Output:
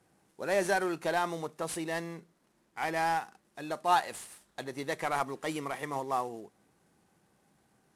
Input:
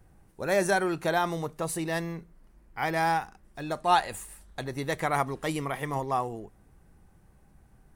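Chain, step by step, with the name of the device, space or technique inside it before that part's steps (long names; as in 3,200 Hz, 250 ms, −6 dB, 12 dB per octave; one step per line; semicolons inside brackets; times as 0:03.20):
early wireless headset (high-pass filter 210 Hz 12 dB per octave; variable-slope delta modulation 64 kbit/s)
level −3 dB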